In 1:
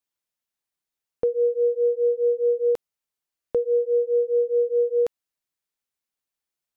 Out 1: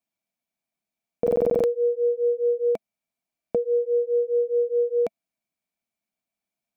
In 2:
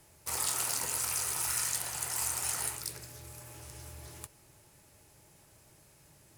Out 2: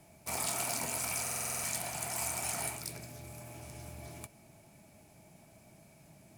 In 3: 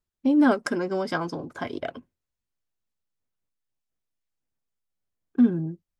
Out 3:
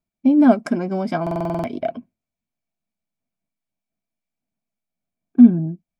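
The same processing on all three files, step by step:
hollow resonant body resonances 210/660/2,300 Hz, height 15 dB, ringing for 30 ms
buffer that repeats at 0:01.22, samples 2,048, times 8
level −3.5 dB

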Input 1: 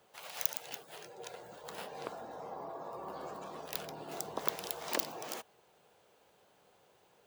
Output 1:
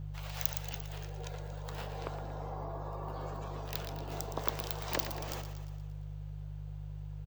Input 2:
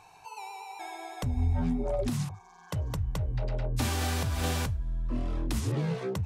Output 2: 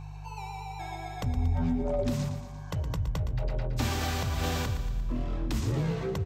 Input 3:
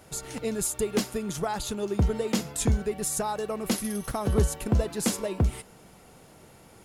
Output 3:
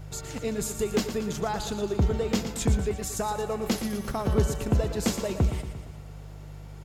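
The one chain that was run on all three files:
hum with harmonics 50 Hz, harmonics 3, −41 dBFS −1 dB per octave
parametric band 10,000 Hz −13.5 dB 0.36 octaves
on a send: repeating echo 116 ms, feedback 57%, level −10 dB

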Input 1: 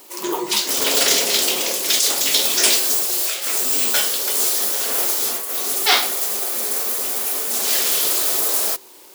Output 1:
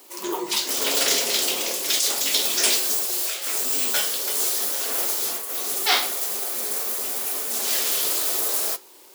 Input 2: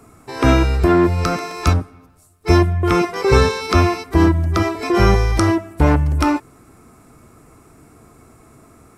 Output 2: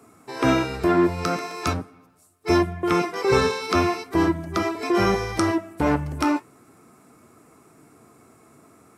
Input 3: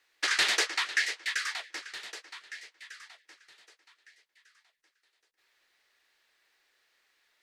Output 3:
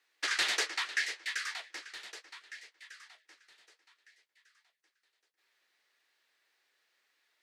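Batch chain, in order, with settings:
high-pass filter 150 Hz 12 dB per octave
flanger 0.41 Hz, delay 2.5 ms, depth 9.8 ms, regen −71%

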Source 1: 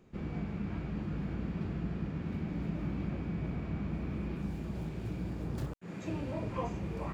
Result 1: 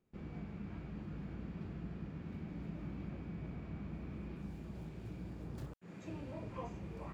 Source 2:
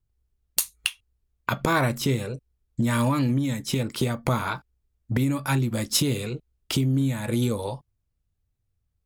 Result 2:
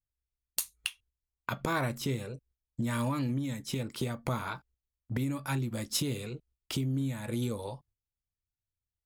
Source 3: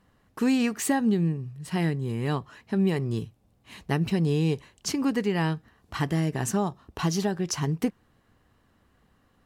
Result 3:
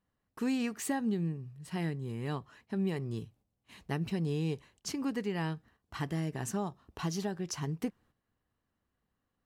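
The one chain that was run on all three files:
noise gate −53 dBFS, range −10 dB
level −8.5 dB

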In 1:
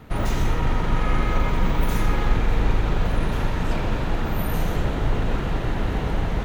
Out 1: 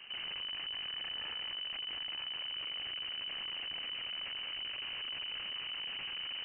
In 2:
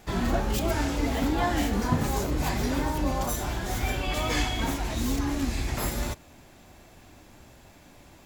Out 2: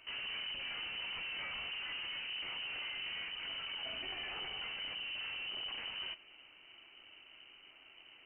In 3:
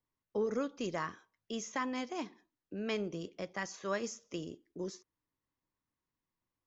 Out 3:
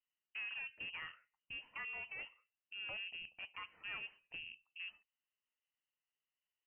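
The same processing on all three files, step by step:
tube saturation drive 36 dB, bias 0.5
voice inversion scrambler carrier 3,000 Hz
level −5 dB

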